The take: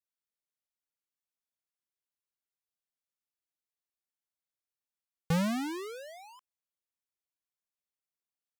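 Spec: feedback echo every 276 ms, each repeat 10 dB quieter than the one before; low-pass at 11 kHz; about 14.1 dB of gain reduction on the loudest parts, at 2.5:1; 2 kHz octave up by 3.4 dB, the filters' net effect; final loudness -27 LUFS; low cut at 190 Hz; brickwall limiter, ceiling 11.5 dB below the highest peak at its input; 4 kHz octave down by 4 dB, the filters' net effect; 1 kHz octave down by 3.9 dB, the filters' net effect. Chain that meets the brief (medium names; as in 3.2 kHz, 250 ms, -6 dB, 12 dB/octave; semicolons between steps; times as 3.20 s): high-pass 190 Hz; low-pass 11 kHz; peaking EQ 1 kHz -7 dB; peaking EQ 2 kHz +8.5 dB; peaking EQ 4 kHz -8.5 dB; compression 2.5:1, threshold -48 dBFS; peak limiter -38.5 dBFS; feedback delay 276 ms, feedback 32%, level -10 dB; trim +22 dB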